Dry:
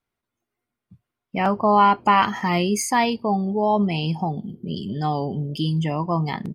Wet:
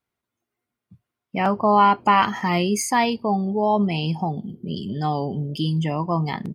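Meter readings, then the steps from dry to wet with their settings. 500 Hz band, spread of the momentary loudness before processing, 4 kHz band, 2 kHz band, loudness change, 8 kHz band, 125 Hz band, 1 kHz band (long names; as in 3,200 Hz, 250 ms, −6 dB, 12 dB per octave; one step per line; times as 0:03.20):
0.0 dB, 12 LU, 0.0 dB, 0.0 dB, 0.0 dB, 0.0 dB, 0.0 dB, 0.0 dB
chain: high-pass filter 50 Hz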